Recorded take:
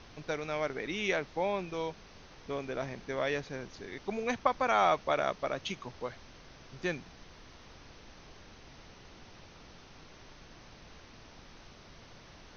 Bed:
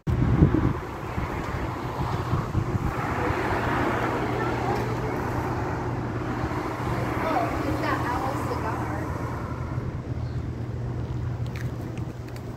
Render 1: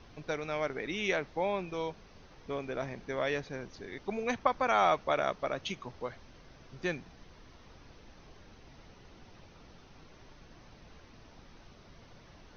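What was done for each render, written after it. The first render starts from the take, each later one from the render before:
broadband denoise 6 dB, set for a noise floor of −54 dBFS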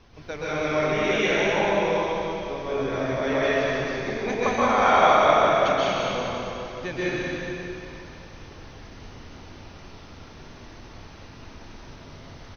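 single-tap delay 185 ms −5.5 dB
dense smooth reverb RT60 2.9 s, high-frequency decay 0.95×, pre-delay 115 ms, DRR −10 dB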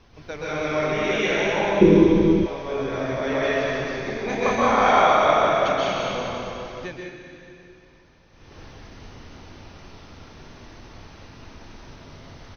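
0:01.81–0:02.46: low shelf with overshoot 460 Hz +13.5 dB, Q 3
0:04.28–0:05.02: double-tracking delay 30 ms −2.5 dB
0:06.83–0:08.59: duck −13.5 dB, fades 0.37 s quadratic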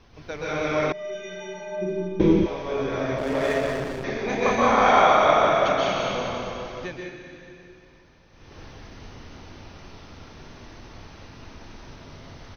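0:00.92–0:02.20: stiff-string resonator 180 Hz, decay 0.68 s, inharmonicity 0.03
0:03.18–0:04.04: slack as between gear wheels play −24 dBFS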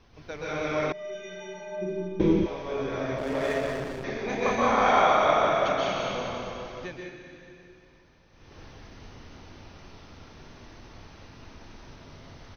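level −4 dB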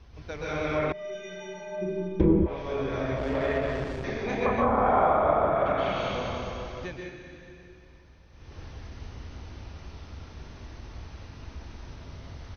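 treble cut that deepens with the level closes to 1,100 Hz, closed at −19 dBFS
parametric band 61 Hz +14 dB 1.2 octaves

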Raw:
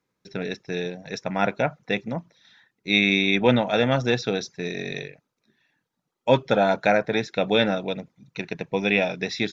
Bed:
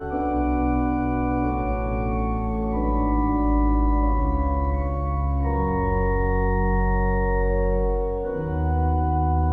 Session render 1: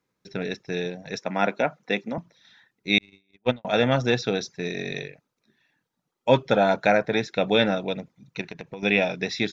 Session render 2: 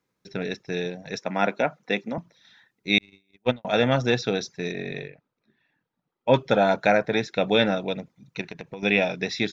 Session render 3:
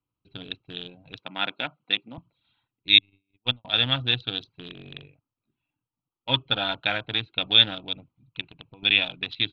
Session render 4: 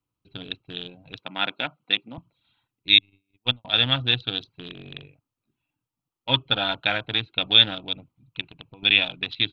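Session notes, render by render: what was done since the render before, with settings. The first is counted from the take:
0:01.19–0:02.18: high-pass filter 180 Hz 24 dB per octave; 0:02.98–0:03.65: noise gate −16 dBFS, range −49 dB; 0:08.41–0:08.83: downward compressor 10 to 1, threshold −32 dBFS
0:04.72–0:06.34: high-frequency loss of the air 230 metres
adaptive Wiener filter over 25 samples; drawn EQ curve 110 Hz 0 dB, 200 Hz −16 dB, 290 Hz −6 dB, 420 Hz −17 dB, 610 Hz −14 dB, 1,200 Hz −1 dB, 2,100 Hz −4 dB, 3,400 Hz +15 dB, 5,900 Hz −20 dB, 11,000 Hz −14 dB
level +2 dB; brickwall limiter −2 dBFS, peak gain reduction 3 dB

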